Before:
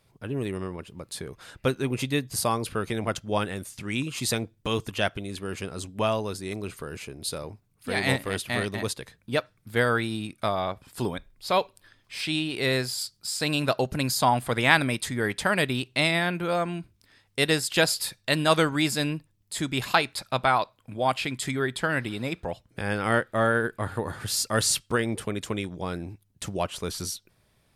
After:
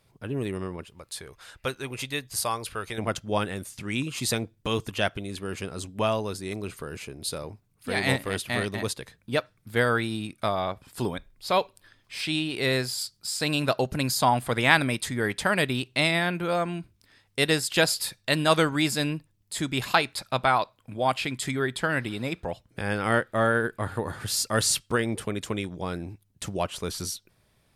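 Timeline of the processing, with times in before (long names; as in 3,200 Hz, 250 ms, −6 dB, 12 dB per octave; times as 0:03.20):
0:00.85–0:02.98: parametric band 210 Hz −11.5 dB 2.4 octaves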